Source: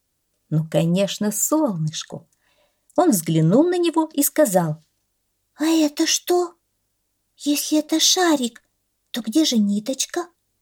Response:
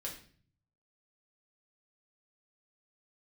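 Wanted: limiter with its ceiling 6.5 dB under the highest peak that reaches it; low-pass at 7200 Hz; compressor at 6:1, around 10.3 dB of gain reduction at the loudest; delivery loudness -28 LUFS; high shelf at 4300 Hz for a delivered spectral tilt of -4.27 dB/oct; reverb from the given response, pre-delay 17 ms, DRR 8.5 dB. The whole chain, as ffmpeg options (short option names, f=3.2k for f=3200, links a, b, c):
-filter_complex "[0:a]lowpass=7.2k,highshelf=f=4.3k:g=5,acompressor=threshold=-22dB:ratio=6,alimiter=limit=-17.5dB:level=0:latency=1,asplit=2[a][b];[1:a]atrim=start_sample=2205,adelay=17[c];[b][c]afir=irnorm=-1:irlink=0,volume=-8dB[d];[a][d]amix=inputs=2:normalize=0,volume=-1dB"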